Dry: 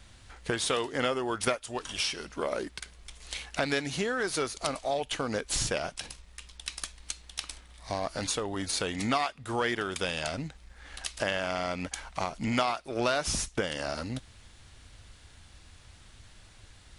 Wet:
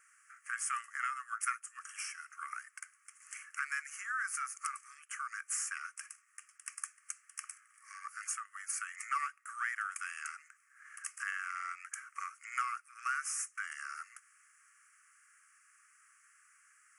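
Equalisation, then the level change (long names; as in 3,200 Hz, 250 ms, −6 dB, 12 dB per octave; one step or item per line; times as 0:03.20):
linear-phase brick-wall high-pass 1,100 Hz
Butterworth band-reject 3,800 Hz, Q 0.7
−1.0 dB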